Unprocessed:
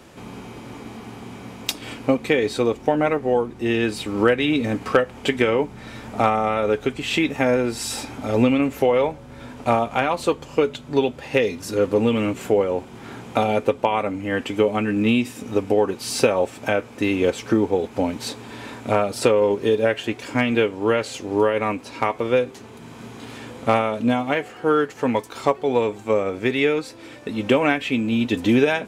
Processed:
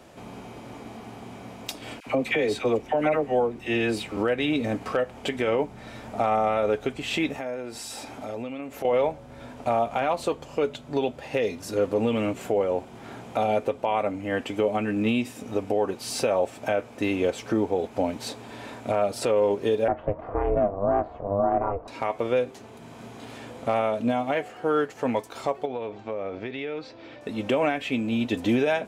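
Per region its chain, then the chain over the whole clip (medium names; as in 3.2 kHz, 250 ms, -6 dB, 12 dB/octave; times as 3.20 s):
2.00–4.17 s: peaking EQ 2.4 kHz +4.5 dB 0.72 oct + phase dispersion lows, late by 67 ms, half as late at 1 kHz
7.38–8.85 s: bass shelf 160 Hz -7.5 dB + compression 3:1, threshold -30 dBFS
19.88–21.88 s: tilt EQ -2.5 dB/octave + ring modulator 200 Hz + resonant low-pass 1.1 kHz, resonance Q 2.2
25.65–27.21 s: low-pass 4.8 kHz 24 dB/octave + compression 5:1, threshold -25 dBFS
whole clip: peaking EQ 660 Hz +7.5 dB 0.54 oct; peak limiter -9 dBFS; trim -5 dB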